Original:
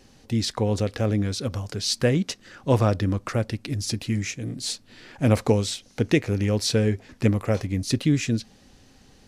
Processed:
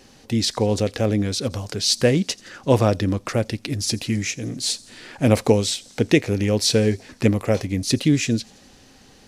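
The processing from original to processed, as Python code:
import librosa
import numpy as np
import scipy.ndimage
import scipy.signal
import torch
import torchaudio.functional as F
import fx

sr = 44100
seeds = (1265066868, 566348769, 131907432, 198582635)

y = fx.low_shelf(x, sr, hz=170.0, db=-7.5)
y = fx.echo_wet_highpass(y, sr, ms=85, feedback_pct=65, hz=5200.0, wet_db=-20)
y = fx.dynamic_eq(y, sr, hz=1300.0, q=1.3, threshold_db=-45.0, ratio=4.0, max_db=-5)
y = F.gain(torch.from_numpy(y), 6.0).numpy()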